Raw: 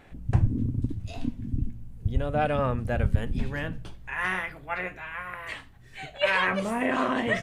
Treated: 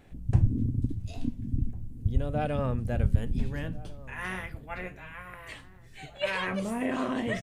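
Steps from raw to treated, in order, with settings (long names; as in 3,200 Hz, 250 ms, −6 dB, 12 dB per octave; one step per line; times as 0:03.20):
parametric band 1,400 Hz −8.5 dB 2.9 octaves
slap from a distant wall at 240 metres, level −19 dB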